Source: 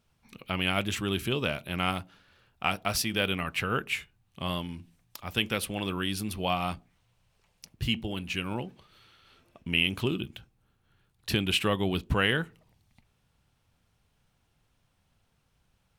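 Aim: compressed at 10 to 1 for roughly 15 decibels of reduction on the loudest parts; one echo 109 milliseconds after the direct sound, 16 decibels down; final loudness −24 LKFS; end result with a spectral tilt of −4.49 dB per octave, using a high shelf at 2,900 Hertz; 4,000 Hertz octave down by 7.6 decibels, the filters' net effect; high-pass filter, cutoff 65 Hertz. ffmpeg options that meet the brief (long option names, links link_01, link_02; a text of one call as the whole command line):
ffmpeg -i in.wav -af "highpass=65,highshelf=frequency=2900:gain=-6.5,equalizer=frequency=4000:width_type=o:gain=-6.5,acompressor=threshold=-38dB:ratio=10,aecho=1:1:109:0.158,volume=20dB" out.wav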